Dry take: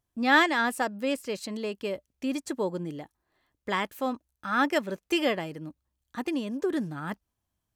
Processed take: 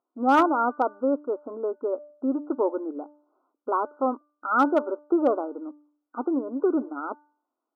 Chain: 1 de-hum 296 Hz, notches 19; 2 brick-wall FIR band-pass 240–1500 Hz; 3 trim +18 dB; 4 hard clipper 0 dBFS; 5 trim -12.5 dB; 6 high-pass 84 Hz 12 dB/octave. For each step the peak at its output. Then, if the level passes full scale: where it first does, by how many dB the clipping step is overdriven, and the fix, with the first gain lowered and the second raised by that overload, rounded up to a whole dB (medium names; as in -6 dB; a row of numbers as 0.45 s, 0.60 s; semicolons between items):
-9.5 dBFS, -12.0 dBFS, +6.0 dBFS, 0.0 dBFS, -12.5 dBFS, -11.0 dBFS; step 3, 6.0 dB; step 3 +12 dB, step 5 -6.5 dB